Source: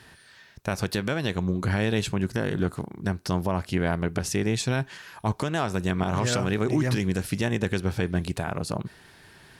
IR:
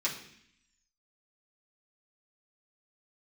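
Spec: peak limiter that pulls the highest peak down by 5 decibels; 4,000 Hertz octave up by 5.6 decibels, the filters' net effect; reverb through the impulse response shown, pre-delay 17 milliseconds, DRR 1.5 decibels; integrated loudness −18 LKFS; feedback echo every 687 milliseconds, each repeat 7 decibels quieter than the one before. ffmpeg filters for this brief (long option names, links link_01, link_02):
-filter_complex "[0:a]equalizer=frequency=4000:width_type=o:gain=7,alimiter=limit=-17dB:level=0:latency=1,aecho=1:1:687|1374|2061|2748|3435:0.447|0.201|0.0905|0.0407|0.0183,asplit=2[link_01][link_02];[1:a]atrim=start_sample=2205,adelay=17[link_03];[link_02][link_03]afir=irnorm=-1:irlink=0,volume=-7.5dB[link_04];[link_01][link_04]amix=inputs=2:normalize=0,volume=8dB"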